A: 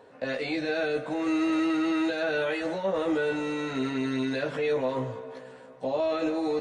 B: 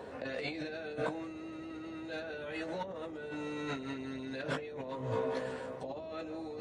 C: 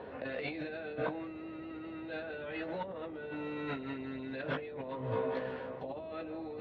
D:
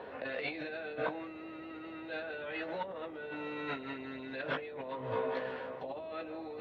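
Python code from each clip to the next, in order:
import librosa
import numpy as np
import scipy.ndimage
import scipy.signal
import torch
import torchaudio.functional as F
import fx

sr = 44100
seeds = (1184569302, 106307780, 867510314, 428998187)

y1 = fx.over_compress(x, sr, threshold_db=-38.0, ratio=-1.0)
y1 = fx.dmg_noise_band(y1, sr, seeds[0], low_hz=64.0, high_hz=610.0, level_db=-51.0)
y1 = F.gain(torch.from_numpy(y1), -2.5).numpy()
y2 = scipy.signal.sosfilt(scipy.signal.butter(4, 3500.0, 'lowpass', fs=sr, output='sos'), y1)
y3 = fx.low_shelf(y2, sr, hz=330.0, db=-10.5)
y3 = F.gain(torch.from_numpy(y3), 3.0).numpy()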